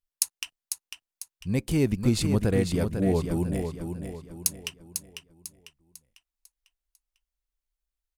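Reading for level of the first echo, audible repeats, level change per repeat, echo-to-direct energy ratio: −7.0 dB, 4, −8.0 dB, −6.0 dB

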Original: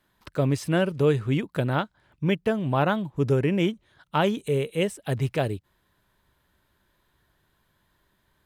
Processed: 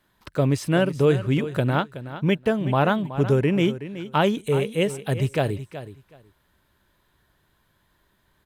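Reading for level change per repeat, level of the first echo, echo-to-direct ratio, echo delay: −15.5 dB, −13.0 dB, −13.0 dB, 373 ms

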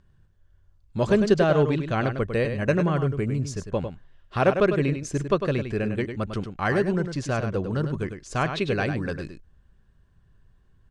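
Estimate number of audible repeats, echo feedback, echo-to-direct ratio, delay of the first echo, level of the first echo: 1, repeats not evenly spaced, −8.0 dB, 101 ms, −8.0 dB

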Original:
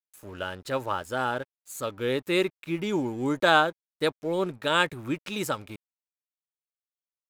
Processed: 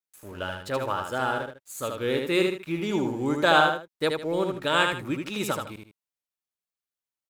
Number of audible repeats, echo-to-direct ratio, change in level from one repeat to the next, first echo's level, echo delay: 2, −4.0 dB, −10.5 dB, −4.5 dB, 77 ms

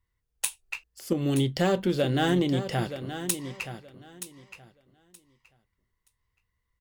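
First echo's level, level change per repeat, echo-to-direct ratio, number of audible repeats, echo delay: −11.0 dB, −14.5 dB, −11.0 dB, 2, 924 ms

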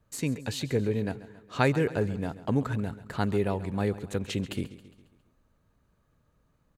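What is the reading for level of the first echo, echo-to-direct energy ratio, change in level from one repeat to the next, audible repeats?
−16.0 dB, −14.5 dB, −6.0 dB, 4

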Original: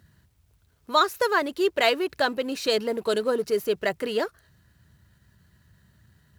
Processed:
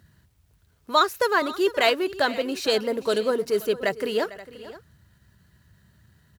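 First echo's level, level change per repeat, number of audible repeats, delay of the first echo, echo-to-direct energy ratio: −17.5 dB, repeats not evenly spaced, 2, 450 ms, −14.5 dB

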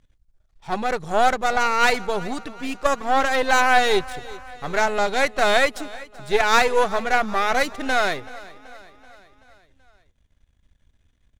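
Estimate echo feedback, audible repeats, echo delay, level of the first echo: 57%, 4, 381 ms, −19.5 dB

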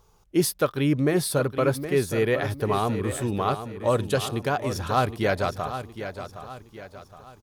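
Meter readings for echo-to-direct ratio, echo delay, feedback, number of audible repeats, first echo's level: −9.5 dB, 766 ms, 42%, 4, −10.5 dB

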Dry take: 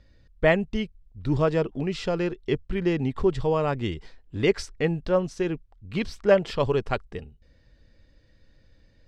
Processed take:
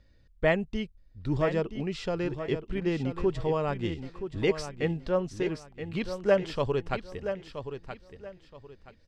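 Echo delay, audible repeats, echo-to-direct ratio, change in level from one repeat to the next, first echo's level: 974 ms, 3, −9.0 dB, −11.5 dB, −9.5 dB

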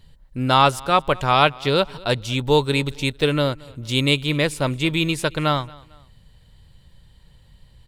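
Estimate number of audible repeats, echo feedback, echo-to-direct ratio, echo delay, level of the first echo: 2, 38%, −23.0 dB, 225 ms, −23.5 dB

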